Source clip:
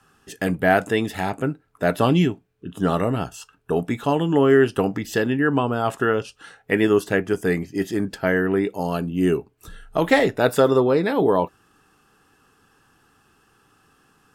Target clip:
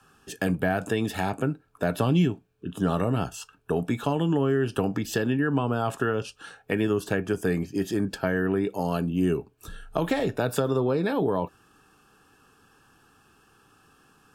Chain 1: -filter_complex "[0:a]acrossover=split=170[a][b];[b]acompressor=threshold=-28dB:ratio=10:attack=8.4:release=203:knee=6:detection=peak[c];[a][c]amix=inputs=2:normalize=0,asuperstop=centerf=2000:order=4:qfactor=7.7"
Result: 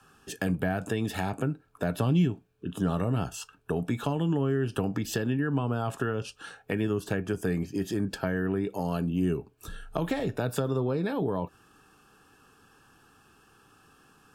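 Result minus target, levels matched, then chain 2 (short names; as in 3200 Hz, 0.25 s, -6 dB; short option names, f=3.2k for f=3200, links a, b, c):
compressor: peak gain reduction +5.5 dB
-filter_complex "[0:a]acrossover=split=170[a][b];[b]acompressor=threshold=-22dB:ratio=10:attack=8.4:release=203:knee=6:detection=peak[c];[a][c]amix=inputs=2:normalize=0,asuperstop=centerf=2000:order=4:qfactor=7.7"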